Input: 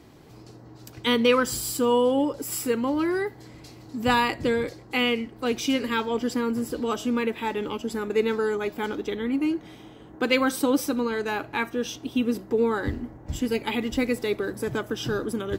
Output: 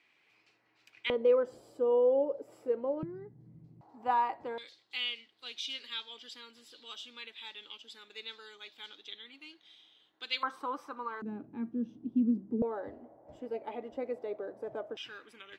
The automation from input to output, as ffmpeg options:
-af "asetnsamples=n=441:p=0,asendcmd='1.1 bandpass f 560;3.03 bandpass f 160;3.81 bandpass f 840;4.58 bandpass f 3600;10.43 bandpass f 1100;11.22 bandpass f 220;12.62 bandpass f 630;14.97 bandpass f 2400',bandpass=f=2400:t=q:w=4.4:csg=0"

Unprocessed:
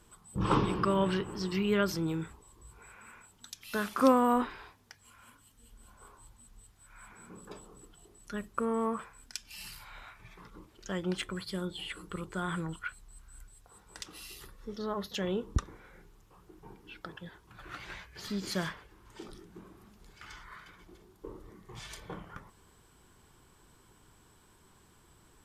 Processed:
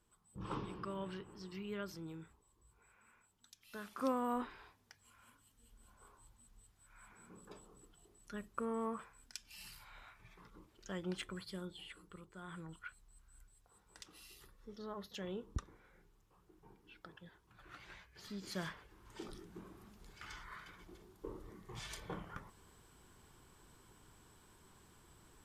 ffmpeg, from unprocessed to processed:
-af "volume=2.51,afade=t=in:st=3.81:d=0.97:silence=0.421697,afade=t=out:st=11.33:d=1:silence=0.316228,afade=t=in:st=12.33:d=0.52:silence=0.446684,afade=t=in:st=18.45:d=0.77:silence=0.354813"

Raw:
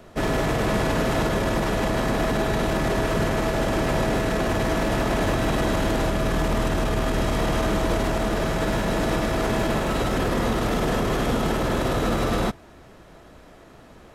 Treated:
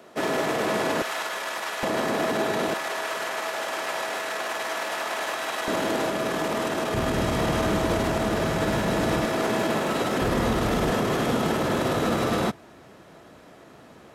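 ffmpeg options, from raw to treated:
-af "asetnsamples=n=441:p=0,asendcmd='1.02 highpass f 1000;1.83 highpass f 260;2.74 highpass f 820;5.68 highpass f 270;6.94 highpass f 74;9.25 highpass f 190;10.21 highpass f 48;10.9 highpass f 120',highpass=280"

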